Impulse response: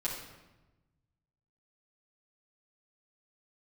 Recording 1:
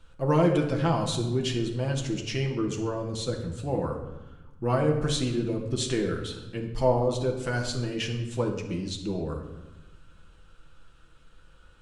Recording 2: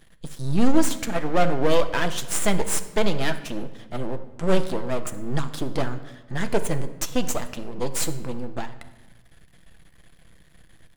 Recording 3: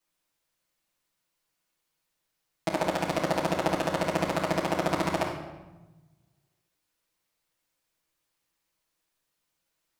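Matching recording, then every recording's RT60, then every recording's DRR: 3; 1.1, 1.1, 1.1 seconds; 0.5, 7.5, −7.5 decibels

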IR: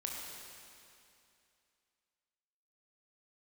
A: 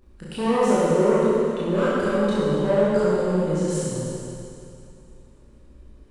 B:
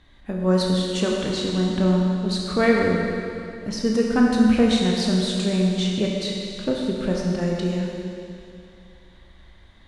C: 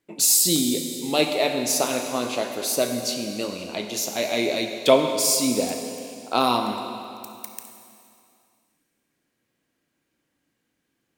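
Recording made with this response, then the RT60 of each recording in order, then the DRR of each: B; 2.6, 2.6, 2.6 seconds; −10.5, −2.0, 4.0 decibels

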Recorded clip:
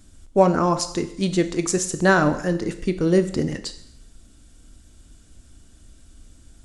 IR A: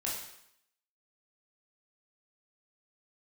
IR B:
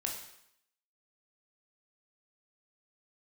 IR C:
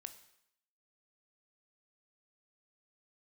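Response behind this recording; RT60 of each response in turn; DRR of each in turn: C; 0.75, 0.75, 0.75 seconds; −5.0, 0.0, 9.0 decibels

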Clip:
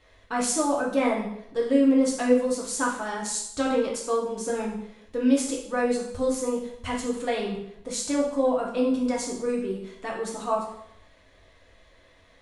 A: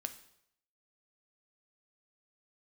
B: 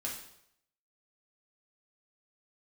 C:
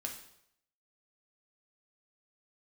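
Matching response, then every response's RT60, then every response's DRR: B; 0.75, 0.75, 0.75 seconds; 8.0, −3.5, 1.0 decibels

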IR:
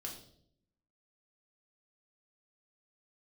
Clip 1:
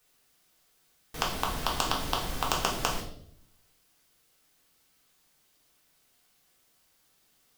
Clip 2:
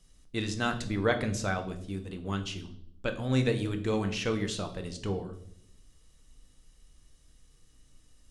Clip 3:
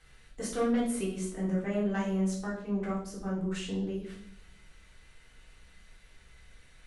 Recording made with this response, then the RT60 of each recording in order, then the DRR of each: 1; 0.65, 0.65, 0.65 seconds; −1.5, 6.0, −6.0 decibels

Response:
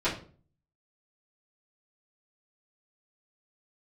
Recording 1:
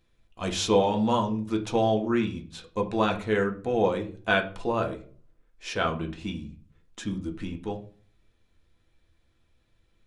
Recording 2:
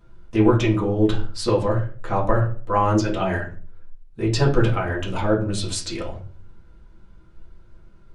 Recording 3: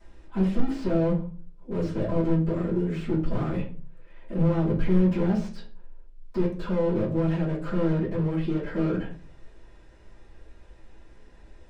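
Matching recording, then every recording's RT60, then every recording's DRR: 3; 0.45, 0.45, 0.45 seconds; 2.0, −6.0, −13.0 decibels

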